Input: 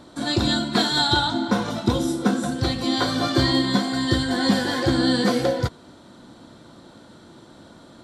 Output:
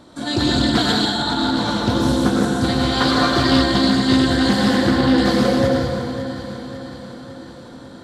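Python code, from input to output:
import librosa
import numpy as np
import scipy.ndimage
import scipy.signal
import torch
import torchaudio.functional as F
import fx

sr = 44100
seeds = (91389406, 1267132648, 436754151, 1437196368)

y = fx.lowpass(x, sr, hz=3400.0, slope=12, at=(4.77, 5.18))
y = fx.echo_feedback(y, sr, ms=551, feedback_pct=57, wet_db=-12.5)
y = fx.over_compress(y, sr, threshold_db=-24.0, ratio=-0.5, at=(0.86, 1.7))
y = fx.peak_eq(y, sr, hz=1400.0, db=5.5, octaves=1.8, at=(2.69, 3.27))
y = fx.rev_plate(y, sr, seeds[0], rt60_s=2.0, hf_ratio=0.6, predelay_ms=80, drr_db=-2.0)
y = fx.doppler_dist(y, sr, depth_ms=0.18)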